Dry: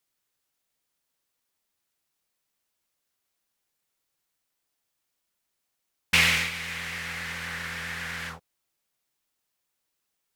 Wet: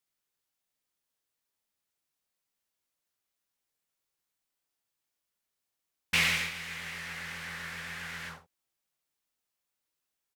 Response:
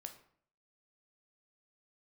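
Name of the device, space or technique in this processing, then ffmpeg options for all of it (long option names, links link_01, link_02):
slapback doubling: -filter_complex "[0:a]asplit=3[link_01][link_02][link_03];[link_02]adelay=19,volume=-8dB[link_04];[link_03]adelay=70,volume=-11dB[link_05];[link_01][link_04][link_05]amix=inputs=3:normalize=0,volume=-6.5dB"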